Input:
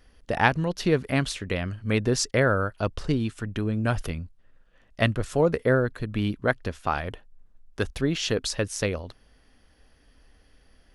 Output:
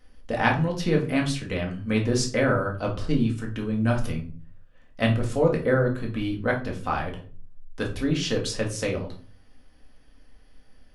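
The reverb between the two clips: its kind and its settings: shoebox room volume 300 m³, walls furnished, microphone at 2 m; gain -4 dB

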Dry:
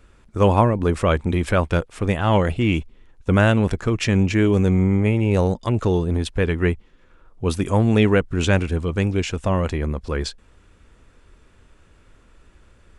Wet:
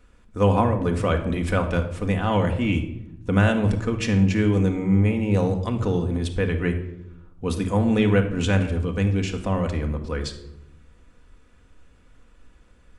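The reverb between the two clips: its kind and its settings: shoebox room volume 2600 m³, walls furnished, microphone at 1.9 m; gain -5 dB

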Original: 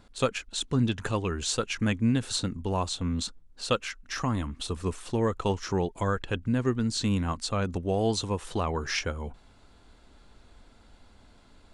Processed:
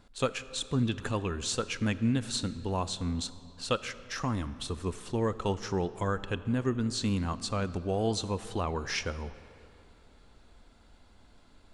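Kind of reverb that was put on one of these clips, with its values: digital reverb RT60 3 s, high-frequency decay 0.65×, pre-delay 0 ms, DRR 14.5 dB; gain -3 dB

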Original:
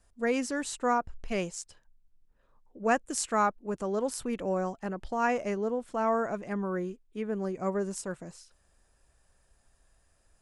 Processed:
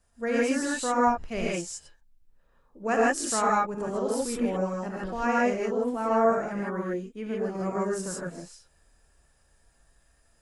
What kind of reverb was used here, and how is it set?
non-linear reverb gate 0.18 s rising, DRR -5 dB; gain -2.5 dB

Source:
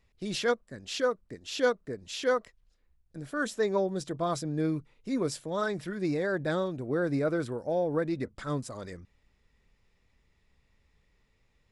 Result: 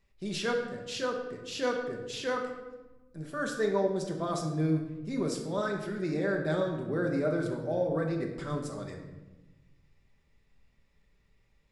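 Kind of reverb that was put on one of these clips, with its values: shoebox room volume 620 m³, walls mixed, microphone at 1.2 m; gain -3.5 dB

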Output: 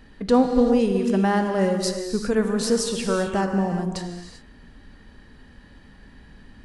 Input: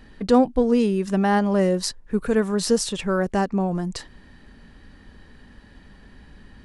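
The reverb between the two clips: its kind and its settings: non-linear reverb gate 0.42 s flat, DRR 4.5 dB; gain -1.5 dB

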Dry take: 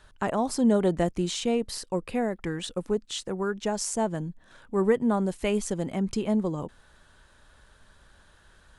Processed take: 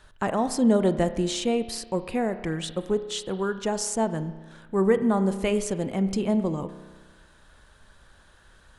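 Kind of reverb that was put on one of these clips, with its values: spring tank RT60 1.4 s, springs 31 ms, chirp 25 ms, DRR 11 dB; gain +1.5 dB

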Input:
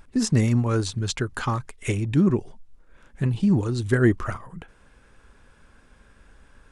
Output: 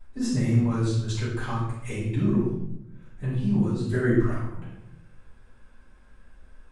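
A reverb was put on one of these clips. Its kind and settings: shoebox room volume 260 m³, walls mixed, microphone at 6.7 m; gain -20.5 dB

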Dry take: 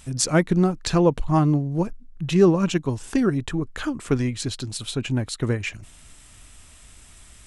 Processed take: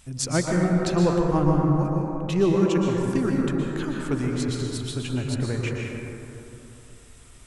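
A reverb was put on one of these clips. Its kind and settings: plate-style reverb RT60 3.1 s, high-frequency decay 0.3×, pre-delay 0.105 s, DRR -1.5 dB; gain -5.5 dB

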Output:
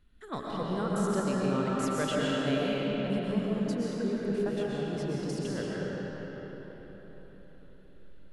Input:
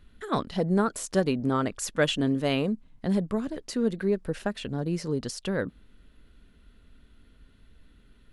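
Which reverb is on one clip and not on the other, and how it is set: digital reverb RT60 4.8 s, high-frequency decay 0.65×, pre-delay 85 ms, DRR -6 dB; gain -10 dB

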